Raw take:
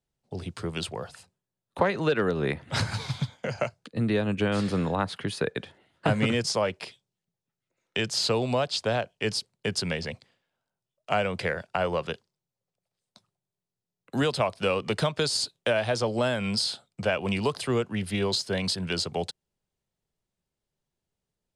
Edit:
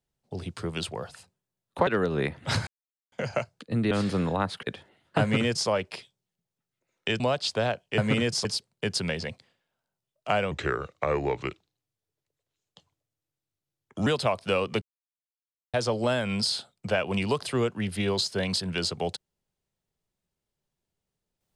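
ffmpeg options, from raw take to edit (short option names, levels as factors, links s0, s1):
-filter_complex "[0:a]asplit=13[s0][s1][s2][s3][s4][s5][s6][s7][s8][s9][s10][s11][s12];[s0]atrim=end=1.872[s13];[s1]atrim=start=2.118:end=2.92,asetpts=PTS-STARTPTS,afade=t=out:st=0.798:d=0.004:c=hsin[s14];[s2]atrim=start=2.92:end=3.37,asetpts=PTS-STARTPTS,volume=0[s15];[s3]atrim=start=3.37:end=4.162,asetpts=PTS-STARTPTS,afade=t=in:d=0.004:c=hsin[s16];[s4]atrim=start=4.498:end=5.222[s17];[s5]atrim=start=5.518:end=8.092[s18];[s6]atrim=start=8.488:end=9.272[s19];[s7]atrim=start=6.098:end=6.572[s20];[s8]atrim=start=9.268:end=11.334[s21];[s9]atrim=start=11.33:end=14.21,asetpts=PTS-STARTPTS,asetrate=35721,aresample=44100[s22];[s10]atrim=start=14.206:end=14.96,asetpts=PTS-STARTPTS,afade=t=out:st=0.75:d=0.004:c=hsin[s23];[s11]atrim=start=14.96:end=15.88,asetpts=PTS-STARTPTS,volume=0[s24];[s12]atrim=start=15.88,asetpts=PTS-STARTPTS,afade=t=in:d=0.004:c=hsin[s25];[s14][s15][s16]concat=n=3:v=0:a=1[s26];[s13][s26]acrossfade=d=0.004:c1=hsin:c2=hsin[s27];[s27][s17]acrossfade=d=0.004:c1=hsin:c2=hsin[s28];[s28][s18]acrossfade=d=0.004:c1=hsin:c2=hsin[s29];[s29][s19]acrossfade=d=0.004:c1=hsin:c2=hsin[s30];[s30][s20]acrossfade=d=0.004:c1=hsin:c2=hsin[s31];[s31][s21]acrossfade=d=0.004:c1=hsin:c2=hsin[s32];[s32][s22]acrossfade=d=0.004:c1=hsin:c2=hsin[s33];[s23][s24][s25]concat=n=3:v=0:a=1[s34];[s33][s34]acrossfade=d=0.004:c1=hsin:c2=hsin"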